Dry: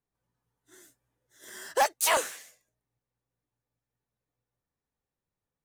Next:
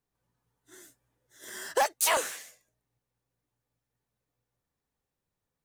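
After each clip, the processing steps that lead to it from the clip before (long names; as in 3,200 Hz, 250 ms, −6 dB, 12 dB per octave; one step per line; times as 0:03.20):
downward compressor 3 to 1, threshold −26 dBFS, peak gain reduction 5.5 dB
level +3 dB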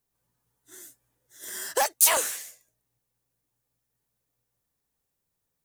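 high-shelf EQ 6,000 Hz +11.5 dB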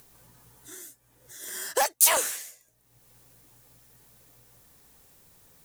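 upward compression, threshold −38 dBFS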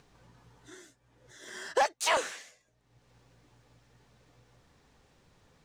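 high-frequency loss of the air 140 metres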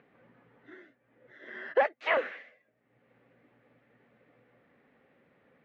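loudspeaker in its box 200–2,500 Hz, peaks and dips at 240 Hz +6 dB, 540 Hz +5 dB, 950 Hz −7 dB, 2,000 Hz +5 dB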